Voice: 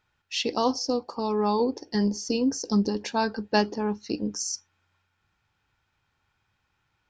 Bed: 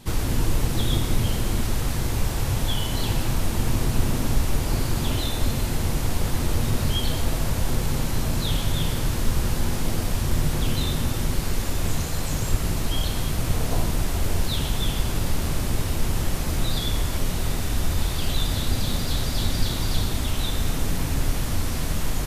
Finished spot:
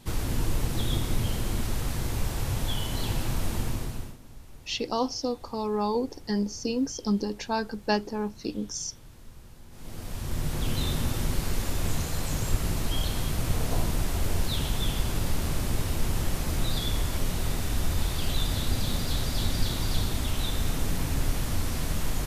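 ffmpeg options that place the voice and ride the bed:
-filter_complex "[0:a]adelay=4350,volume=-3dB[a];[1:a]volume=17dB,afade=t=out:st=3.54:d=0.63:silence=0.0944061,afade=t=in:st=9.7:d=1.17:silence=0.0794328[b];[a][b]amix=inputs=2:normalize=0"

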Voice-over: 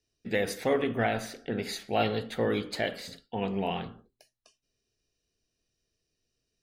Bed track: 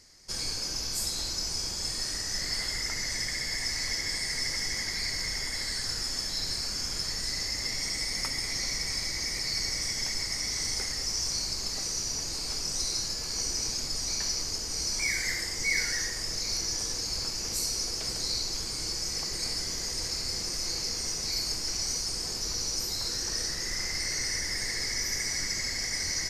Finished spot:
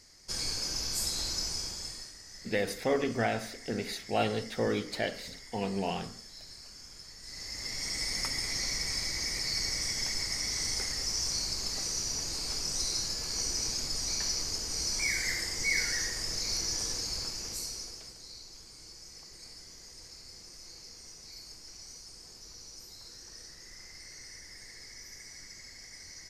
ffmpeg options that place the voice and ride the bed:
-filter_complex "[0:a]adelay=2200,volume=-2dB[a];[1:a]volume=14dB,afade=t=out:st=1.38:d=0.75:silence=0.16788,afade=t=in:st=7.2:d=0.87:silence=0.177828,afade=t=out:st=16.89:d=1.26:silence=0.16788[b];[a][b]amix=inputs=2:normalize=0"

